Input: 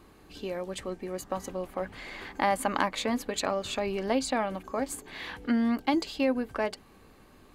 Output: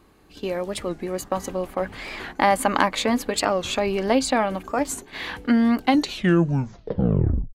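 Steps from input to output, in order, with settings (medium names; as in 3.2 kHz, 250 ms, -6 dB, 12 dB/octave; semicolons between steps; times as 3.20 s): tape stop on the ending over 1.73 s; gate -44 dBFS, range -8 dB; warped record 45 rpm, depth 160 cents; trim +7.5 dB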